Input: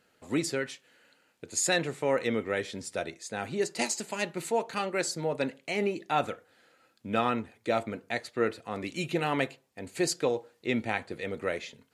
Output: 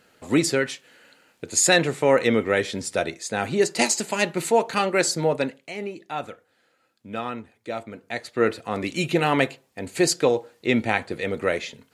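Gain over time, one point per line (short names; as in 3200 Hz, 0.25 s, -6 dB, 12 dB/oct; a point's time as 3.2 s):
5.29 s +9 dB
5.73 s -3 dB
7.87 s -3 dB
8.49 s +8 dB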